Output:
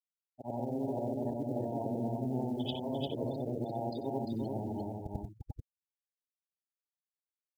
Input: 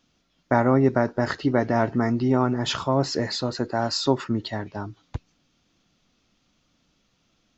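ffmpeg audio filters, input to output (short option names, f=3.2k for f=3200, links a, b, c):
-filter_complex "[0:a]afftfilt=real='re':imag='-im':win_size=8192:overlap=0.75,adynamicsmooth=sensitivity=5.5:basefreq=960,firequalizer=gain_entry='entry(850,0);entry(1200,-22);entry(3200,1);entry(5800,-13)':delay=0.05:min_phase=1,areverse,acompressor=threshold=-33dB:ratio=6,areverse,afftfilt=real='re*gte(hypot(re,im),0.0112)':imag='im*gte(hypot(re,im),0.0112)':win_size=1024:overlap=0.75,acrusher=bits=9:mode=log:mix=0:aa=0.000001,asplit=2[a][b];[b]aecho=0:1:348:0.668[c];[a][c]amix=inputs=2:normalize=0"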